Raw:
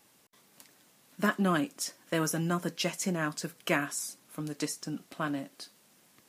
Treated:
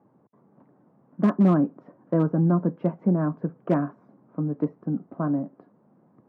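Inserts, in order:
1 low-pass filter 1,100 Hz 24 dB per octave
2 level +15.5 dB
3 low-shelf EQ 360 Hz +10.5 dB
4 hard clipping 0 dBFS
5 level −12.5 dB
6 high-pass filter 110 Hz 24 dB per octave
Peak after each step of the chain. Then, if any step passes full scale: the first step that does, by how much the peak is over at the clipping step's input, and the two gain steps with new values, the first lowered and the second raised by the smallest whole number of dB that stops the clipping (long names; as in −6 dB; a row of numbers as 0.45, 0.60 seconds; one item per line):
−17.0, −1.5, +5.5, 0.0, −12.5, −9.5 dBFS
step 3, 5.5 dB
step 2 +9.5 dB, step 5 −6.5 dB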